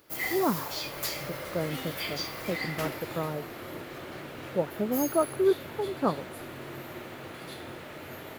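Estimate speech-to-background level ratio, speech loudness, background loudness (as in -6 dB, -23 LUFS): 5.0 dB, -31.5 LUFS, -36.5 LUFS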